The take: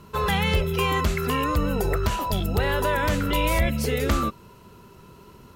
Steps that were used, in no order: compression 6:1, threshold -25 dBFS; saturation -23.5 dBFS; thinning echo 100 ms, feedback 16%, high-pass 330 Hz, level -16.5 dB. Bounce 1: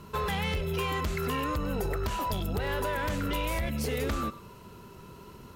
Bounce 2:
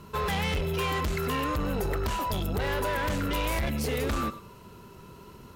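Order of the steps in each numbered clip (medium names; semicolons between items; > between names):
compression > thinning echo > saturation; thinning echo > saturation > compression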